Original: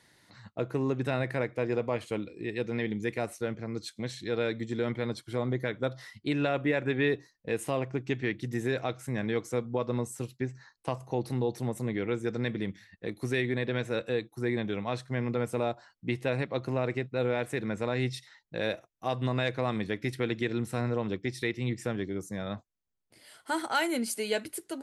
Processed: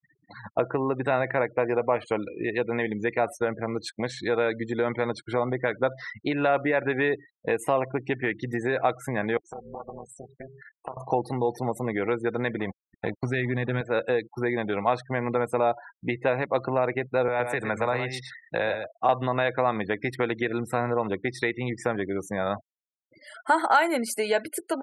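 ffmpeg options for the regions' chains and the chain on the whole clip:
-filter_complex "[0:a]asettb=1/sr,asplit=3[a][b][c];[a]atrim=end=9.374[d];[b]atrim=start=9.37:end=10.97,asetpts=PTS-STARTPTS,afade=t=in:d=0.004:c=qsin,afade=t=out:st=1.596:d=0.004:c=qsin,acompressor=threshold=-44dB:ratio=5:attack=3.2:release=140:knee=1:detection=peak,tremolo=f=280:d=0.947[e];[c]atrim=start=10.966[f];[d][e]acrossfade=d=0.004:c1=hsin:c2=qsin[g];[g][f]acrossfade=d=0.004:c1=qsin:c2=hsin,asettb=1/sr,asplit=3[h][i][j];[h]atrim=end=12.594[k];[i]atrim=start=12.59:end=13.81,asetpts=PTS-STARTPTS,afade=t=in:d=0.004:c=qsin,afade=t=out:st=1.216:d=0.004:c=qsin,asubboost=boost=11:cutoff=230,aeval=exprs='sgn(val(0))*max(abs(val(0))-0.00531,0)':c=same,acrusher=bits=6:mode=log:mix=0:aa=0.000001[l];[j]atrim=start=13.806[m];[k][l]acrossfade=d=0.004:c1=hsin:c2=qsin[n];[n][m]acrossfade=d=0.004:c1=qsin:c2=hsin,asettb=1/sr,asplit=3[o][p][q];[o]atrim=end=17.284[r];[p]atrim=start=17.28:end=19.09,asetpts=PTS-STARTPTS,afade=t=in:d=0.004:c=qsin,afade=t=out:st=1.806:d=0.004:c=qsin,acrossover=split=150|500[s][t][u];[s]acompressor=threshold=-37dB:ratio=4[v];[t]acompressor=threshold=-44dB:ratio=4[w];[u]acompressor=threshold=-35dB:ratio=4[x];[v][w][x]amix=inputs=3:normalize=0,aecho=1:1:115:0.376,atrim=end_sample=79821[y];[q]atrim=start=19.086[z];[r][y]acrossfade=d=0.004:c1=hsin:c2=qsin[aa];[aa][z]acrossfade=d=0.004:c1=qsin:c2=hsin,acompressor=threshold=-35dB:ratio=2.5,afftfilt=real='re*gte(hypot(re,im),0.00316)':imag='im*gte(hypot(re,im),0.00316)':win_size=1024:overlap=0.75,firequalizer=gain_entry='entry(110,0);entry(760,14);entry(3200,2)':delay=0.05:min_phase=1,volume=4dB"

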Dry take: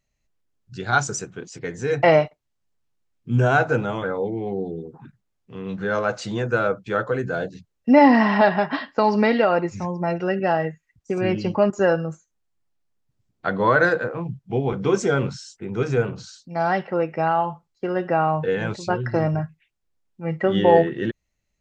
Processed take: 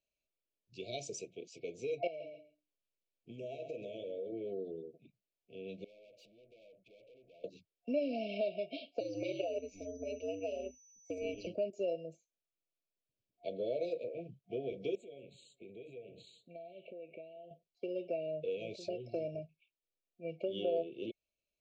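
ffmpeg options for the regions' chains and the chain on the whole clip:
-filter_complex "[0:a]asettb=1/sr,asplit=3[a][b][c];[a]atrim=end=2.074[d];[b]atrim=start=2.07:end=4.32,asetpts=PTS-STARTPTS,afade=t=in:d=0.004:c=qsin,afade=t=out:st=2.246:d=0.004:c=qsin,bandreject=f=60:t=h:w=6,bandreject=f=120:t=h:w=6,bandreject=f=180:t=h:w=6,bandreject=f=240:t=h:w=6,bandreject=f=300:t=h:w=6,acompressor=threshold=-26dB:ratio=12:attack=3.2:release=140:knee=1:detection=peak,aecho=1:1:134|268:0.335|0.0569,atrim=end_sample=99225[e];[c]atrim=start=4.316[f];[d][e]acrossfade=d=0.004:c1=hsin:c2=qsin[g];[g][f]acrossfade=d=0.004:c1=qsin:c2=hsin,asettb=1/sr,asplit=3[h][i][j];[h]atrim=end=5.844[k];[i]atrim=start=5.84:end=7.44,asetpts=PTS-STARTPTS,afade=t=in:d=0.004:c=qsin,afade=t=out:st=1.596:d=0.004:c=qsin,highshelf=f=2.3k:g=-11.5,acompressor=threshold=-36dB:ratio=16:attack=3.2:release=140:knee=1:detection=peak,aeval=exprs='(tanh(251*val(0)+0.2)-tanh(0.2))/251':c=same[l];[j]atrim=start=7.436[m];[k][l]acrossfade=d=0.004:c1=hsin:c2=qsin[n];[n][m]acrossfade=d=0.004:c1=qsin:c2=hsin,asettb=1/sr,asplit=3[o][p][q];[o]atrim=end=9.004[r];[p]atrim=start=9:end=11.47,asetpts=PTS-STARTPTS,afade=t=in:d=0.004:c=qsin,afade=t=out:st=2.466:d=0.004:c=qsin,aeval=exprs='val(0)*sin(2*PI*95*n/s)':c=same,aeval=exprs='val(0)+0.00562*sin(2*PI*6000*n/s)':c=same[s];[q]atrim=start=11.466[t];[r][s]acrossfade=d=0.004:c1=hsin:c2=qsin[u];[u][t]acrossfade=d=0.004:c1=qsin:c2=hsin,asettb=1/sr,asplit=3[v][w][x];[v]atrim=end=14.954[y];[w]atrim=start=14.95:end=17.51,asetpts=PTS-STARTPTS,afade=t=in:d=0.004:c=qsin,afade=t=out:st=2.556:d=0.004:c=qsin,acompressor=threshold=-33dB:ratio=16:attack=3.2:release=140:knee=1:detection=peak,asuperstop=centerf=5400:order=8:qfactor=1.9,asplit=2[z][aa];[aa]adelay=188,lowpass=f=1.5k:p=1,volume=-22dB,asplit=2[ab][ac];[ac]adelay=188,lowpass=f=1.5k:p=1,volume=0.27[ad];[z][ab][ad]amix=inputs=3:normalize=0,atrim=end_sample=112896[ae];[x]atrim=start=17.506[af];[y][ae]acrossfade=d=0.004:c1=hsin:c2=qsin[ag];[ag][af]acrossfade=d=0.004:c1=qsin:c2=hsin,afftfilt=real='re*(1-between(b*sr/4096,710,2200))':imag='im*(1-between(b*sr/4096,710,2200))':win_size=4096:overlap=0.75,acrossover=split=350 4500:gain=0.141 1 0.2[ah][ai][aj];[ah][ai][aj]amix=inputs=3:normalize=0,acompressor=threshold=-31dB:ratio=2,volume=-7dB"

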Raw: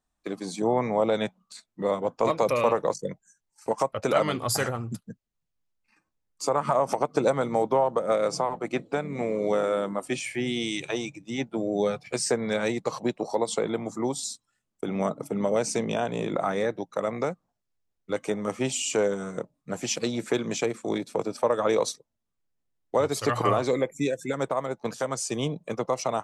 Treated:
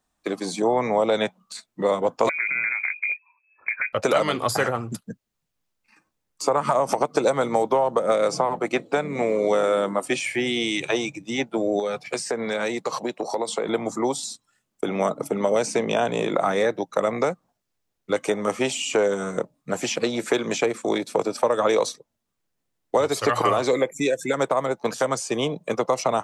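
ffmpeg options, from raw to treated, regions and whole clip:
-filter_complex "[0:a]asettb=1/sr,asplit=3[a][b][c];[a]atrim=end=2.294[d];[b]atrim=start=2.29:end=3.93,asetpts=PTS-STARTPTS,afade=t=in:d=0.004:c=qsin,afade=t=out:st=1.636:d=0.004:c=qsin,lowshelf=f=410:t=q:w=1.5:g=10.5,acompressor=threshold=-29dB:ratio=10:attack=3.2:release=140:knee=1:detection=peak,lowpass=f=2.2k:t=q:w=0.5098,lowpass=f=2.2k:t=q:w=0.6013,lowpass=f=2.2k:t=q:w=0.9,lowpass=f=2.2k:t=q:w=2.563,afreqshift=-2600[e];[c]atrim=start=3.926[f];[d][e]acrossfade=d=0.004:c1=hsin:c2=qsin[g];[g][f]acrossfade=d=0.004:c1=qsin:c2=hsin,asettb=1/sr,asplit=3[h][i][j];[h]atrim=end=11.794[k];[i]atrim=start=11.79:end=13.69,asetpts=PTS-STARTPTS,afade=t=in:d=0.004:c=qsin,afade=t=out:st=1.896:d=0.004:c=qsin,highpass=f=240:p=1,acompressor=threshold=-29dB:ratio=4:attack=3.2:release=140:knee=1:detection=peak[l];[j]atrim=start=13.686[m];[k][l]acrossfade=d=0.004:c1=hsin:c2=qsin[n];[n][m]acrossfade=d=0.004:c1=qsin:c2=hsin,lowshelf=f=82:g=-9.5,acrossover=split=350|3000[o][p][q];[o]acompressor=threshold=-39dB:ratio=4[r];[p]acompressor=threshold=-26dB:ratio=4[s];[q]acompressor=threshold=-40dB:ratio=4[t];[r][s][t]amix=inputs=3:normalize=0,volume=8dB"

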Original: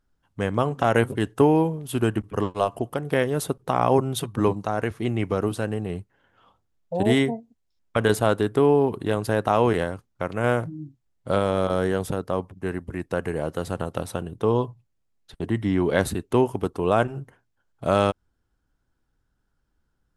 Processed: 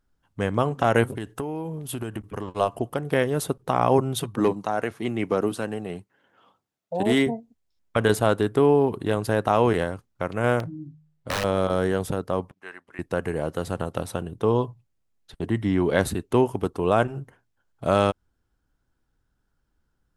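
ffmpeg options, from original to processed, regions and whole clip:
-filter_complex "[0:a]asettb=1/sr,asplit=3[a][b][c];[a]atrim=end=1.044[d];[b]atrim=start=1.04:end=2.48,asetpts=PTS-STARTPTS,afade=t=in:d=0.004:c=qsin,afade=t=out:st=1.436:d=0.004:c=qsin,highshelf=f=10k:g=5,acompressor=threshold=-27dB:ratio=6:attack=3.2:release=140:knee=1:detection=peak[e];[c]atrim=start=2.476[f];[d][e]acrossfade=d=0.004:c1=hsin:c2=qsin[g];[g][f]acrossfade=d=0.004:c1=qsin:c2=hsin,asettb=1/sr,asplit=3[h][i][j];[h]atrim=end=4.354[k];[i]atrim=start=4.35:end=7.27,asetpts=PTS-STARTPTS,afade=t=in:d=0.004:c=qsin,afade=t=out:st=2.916:d=0.004:c=qsin,highpass=190,aphaser=in_gain=1:out_gain=1:delay=1.6:decay=0.24:speed=1:type=triangular,asoftclip=type=hard:threshold=-12.5dB[l];[j]atrim=start=7.266[m];[k][l]acrossfade=d=0.004:c1=hsin:c2=qsin[n];[n][m]acrossfade=d=0.004:c1=qsin:c2=hsin,asettb=1/sr,asplit=3[o][p][q];[o]atrim=end=10.604[r];[p]atrim=start=10.6:end=11.44,asetpts=PTS-STARTPTS,afade=t=in:d=0.004:c=qsin,afade=t=out:st=0.836:d=0.004:c=qsin,bandreject=f=51.3:t=h:w=4,bandreject=f=102.6:t=h:w=4,bandreject=f=153.9:t=h:w=4,bandreject=f=205.2:t=h:w=4,aeval=exprs='(mod(8.91*val(0)+1,2)-1)/8.91':c=same,highshelf=f=7k:g=-8.5[s];[q]atrim=start=11.436[t];[r][s]acrossfade=d=0.004:c1=hsin:c2=qsin[u];[u][t]acrossfade=d=0.004:c1=qsin:c2=hsin,asettb=1/sr,asplit=3[v][w][x];[v]atrim=end=12.514[y];[w]atrim=start=12.51:end=12.99,asetpts=PTS-STARTPTS,afade=t=in:d=0.004:c=qsin,afade=t=out:st=0.476:d=0.004:c=qsin,highpass=1.2k,aemphasis=mode=reproduction:type=bsi[z];[x]atrim=start=12.986[aa];[y][z]acrossfade=d=0.004:c1=hsin:c2=qsin[ab];[ab][aa]acrossfade=d=0.004:c1=qsin:c2=hsin"

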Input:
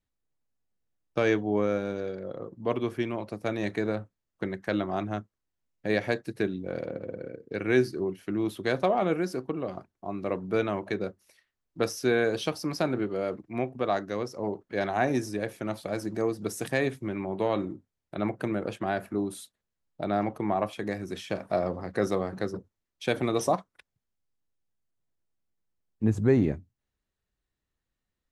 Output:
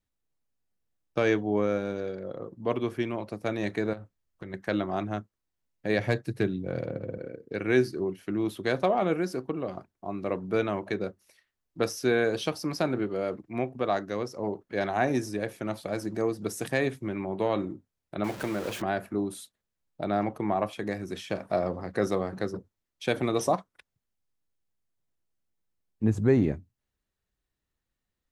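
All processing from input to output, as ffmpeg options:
-filter_complex "[0:a]asettb=1/sr,asplit=3[a][b][c];[a]atrim=end=3.934[d];[b]atrim=start=3.93:end=4.54,asetpts=PTS-STARTPTS,afade=t=in:d=0.004:c=qsin,afade=t=out:st=0.606:d=0.004:c=qsin,asubboost=boost=11.5:cutoff=130,acompressor=threshold=-36dB:ratio=6:attack=3.2:release=140:knee=1:detection=peak[e];[c]atrim=start=4.536[f];[d][e]acrossfade=d=0.004:c1=hsin:c2=qsin[g];[g][f]acrossfade=d=0.004:c1=qsin:c2=hsin,asettb=1/sr,asplit=3[h][i][j];[h]atrim=end=5.984[k];[i]atrim=start=5.98:end=7.18,asetpts=PTS-STARTPTS,afade=t=in:d=0.004:c=qsin,afade=t=out:st=1.196:d=0.004:c=qsin,equalizer=f=120:t=o:w=0.86:g=9.5,asoftclip=type=hard:threshold=-15dB[l];[j]atrim=start=7.176[m];[k][l]acrossfade=d=0.004:c1=hsin:c2=qsin[n];[n][m]acrossfade=d=0.004:c1=qsin:c2=hsin,asettb=1/sr,asplit=3[o][p][q];[o]atrim=end=18.244[r];[p]atrim=start=18.24:end=18.82,asetpts=PTS-STARTPTS,afade=t=in:d=0.004:c=qsin,afade=t=out:st=0.576:d=0.004:c=qsin,aeval=exprs='val(0)+0.5*0.0224*sgn(val(0))':c=same,lowshelf=f=380:g=-6[s];[q]atrim=start=18.816[t];[r][s]acrossfade=d=0.004:c1=hsin:c2=qsin[u];[u][t]acrossfade=d=0.004:c1=qsin:c2=hsin"

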